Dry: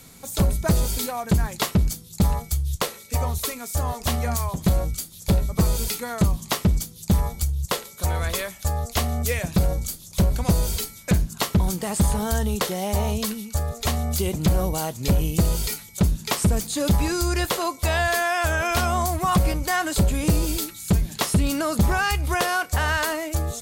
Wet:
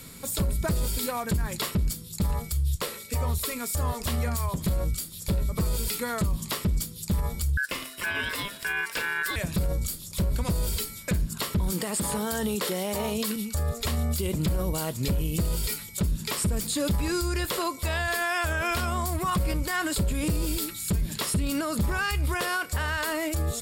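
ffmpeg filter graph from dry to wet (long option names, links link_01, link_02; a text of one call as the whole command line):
ffmpeg -i in.wav -filter_complex "[0:a]asettb=1/sr,asplit=3[link_01][link_02][link_03];[link_01]atrim=end=7.574[link_04];[link_02]atrim=start=7.57:end=9.36,asetpts=PTS-STARTPTS,afade=type=in:duration=0.004:curve=qsin,afade=type=out:start_time=1.786:duration=0.004:curve=qsin,equalizer=frequency=1400:width_type=o:width=1.8:gain=8,aeval=exprs='val(0)*sin(2*PI*1600*n/s)':channel_layout=same,asoftclip=type=hard:threshold=-10dB[link_05];[link_03]atrim=start=9.356[link_06];[link_04][link_05]acrossfade=duration=0.004:curve1=hsin:curve2=qsin[link_07];[link_07][link_06]acrossfade=duration=0.004:curve1=qsin:curve2=hsin,asettb=1/sr,asplit=3[link_08][link_09][link_10];[link_08]atrim=end=11.724[link_11];[link_09]atrim=start=11.72:end=13.36,asetpts=PTS-STARTPTS,afade=type=in:duration=0.004:curve=qsin,afade=type=out:start_time=1.636:duration=0.004:curve=qsin,highpass=200,acontrast=38[link_12];[link_10]atrim=start=13.356[link_13];[link_11][link_12]acrossfade=duration=0.004:curve1=hsin:curve2=qsin[link_14];[link_14][link_13]acrossfade=duration=0.004:curve1=qsin:curve2=hsin,equalizer=frequency=760:width=4.6:gain=-9,bandreject=frequency=6200:width=6.2,alimiter=limit=-22.5dB:level=0:latency=1:release=92,volume=3dB" out.wav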